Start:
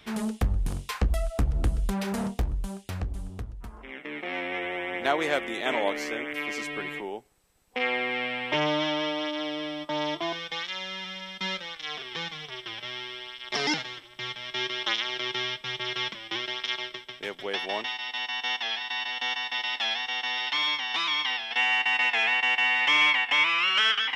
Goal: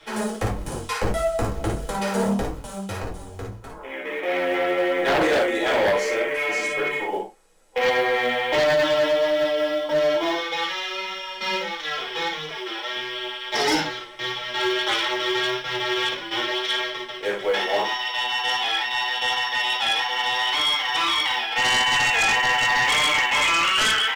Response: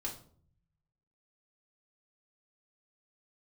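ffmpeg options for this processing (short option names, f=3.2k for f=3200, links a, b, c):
-filter_complex "[0:a]lowpass=f=11k:w=0.5412,lowpass=f=11k:w=1.3066,equalizer=f=3.2k:t=o:w=1.9:g=-4.5,asettb=1/sr,asplit=3[a][b][c];[a]atrim=end=12.504[d];[b]atrim=start=12.5:end=12.96,asetpts=PTS-STARTPTS,afade=t=in:d=0.004:c=qsin,afade=t=out:st=0.456:d=0.004:c=qsin,highpass=f=220:w=0.5412,highpass=f=220:w=1.3066[e];[c]atrim=start=12.956[f];[d][e]acrossfade=d=0.004:c1=hsin:c2=qsin[g];[g][f]acrossfade=d=0.004:c1=qsin:c2=hsin,aecho=1:1:45|56:0.266|0.562,flanger=delay=5.9:depth=5.1:regen=30:speed=1.6:shape=triangular,asplit=2[h][i];[i]acrusher=bits=4:mode=log:mix=0:aa=0.000001,volume=-8.5dB[j];[h][j]amix=inputs=2:normalize=0[k];[1:a]atrim=start_sample=2205,afade=t=out:st=0.21:d=0.01,atrim=end_sample=9702,asetrate=70560,aresample=44100[l];[k][l]afir=irnorm=-1:irlink=0,acrossover=split=300[m][n];[n]aeval=exprs='0.158*sin(PI/2*3.16*val(0)/0.158)':c=same[o];[m][o]amix=inputs=2:normalize=0"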